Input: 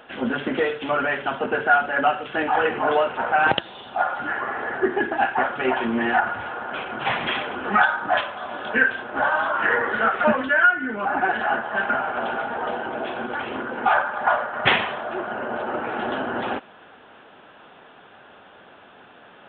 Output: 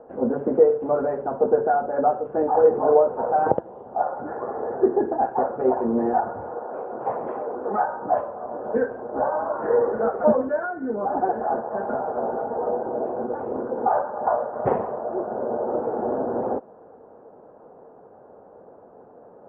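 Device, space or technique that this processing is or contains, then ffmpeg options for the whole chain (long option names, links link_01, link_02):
under water: -filter_complex "[0:a]lowpass=frequency=890:width=0.5412,lowpass=frequency=890:width=1.3066,equalizer=frequency=480:width_type=o:width=0.48:gain=9,asettb=1/sr,asplit=3[link_01][link_02][link_03];[link_01]atrim=end=6.584[link_04];[link_02]atrim=start=6.58:end=7.83,asetpts=PTS-STARTPTS,afade=type=in:duration=0.004:curve=qsin,afade=type=out:start_time=1.246:duration=0.004:curve=qsin,bass=frequency=250:gain=-10,treble=frequency=4000:gain=-8[link_05];[link_03]atrim=start=7.826[link_06];[link_04][link_05]acrossfade=duration=0.004:curve1=hsin:curve2=qsin[link_07];[link_07][link_06]acrossfade=duration=0.004:curve1=qsin:curve2=hsin"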